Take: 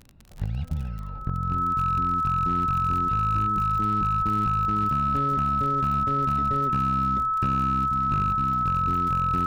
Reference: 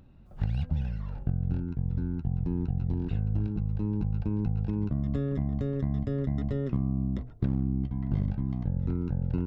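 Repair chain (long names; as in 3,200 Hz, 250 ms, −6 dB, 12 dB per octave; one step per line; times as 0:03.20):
clipped peaks rebuilt −17.5 dBFS
click removal
notch filter 1,300 Hz, Q 30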